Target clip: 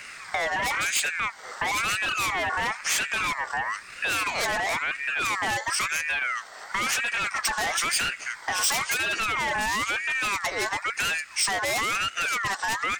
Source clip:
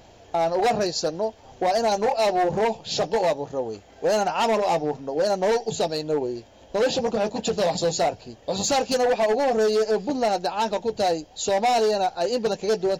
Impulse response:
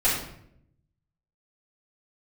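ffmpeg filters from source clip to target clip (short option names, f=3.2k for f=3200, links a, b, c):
-af "equalizer=f=1.2k:w=1.5:g=-11,aeval=exprs='0.188*(cos(1*acos(clip(val(0)/0.188,-1,1)))-cos(1*PI/2))+0.0668*(cos(5*acos(clip(val(0)/0.188,-1,1)))-cos(5*PI/2))':c=same,acompressor=threshold=-29dB:ratio=3,highshelf=f=5.4k:g=8.5,aeval=exprs='val(0)*sin(2*PI*1700*n/s+1700*0.25/0.99*sin(2*PI*0.99*n/s))':c=same,volume=3.5dB"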